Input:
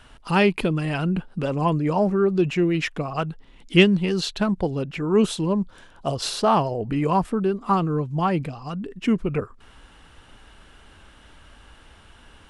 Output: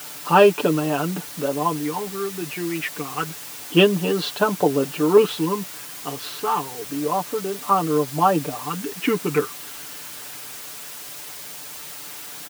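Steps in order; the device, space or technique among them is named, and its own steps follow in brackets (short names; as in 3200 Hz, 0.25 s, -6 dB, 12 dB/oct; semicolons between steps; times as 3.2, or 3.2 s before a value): shortwave radio (BPF 320–2800 Hz; tremolo 0.22 Hz, depth 70%; LFO notch square 0.29 Hz 610–2100 Hz; white noise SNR 14 dB); HPF 82 Hz; comb 6.8 ms, depth 71%; gain +7.5 dB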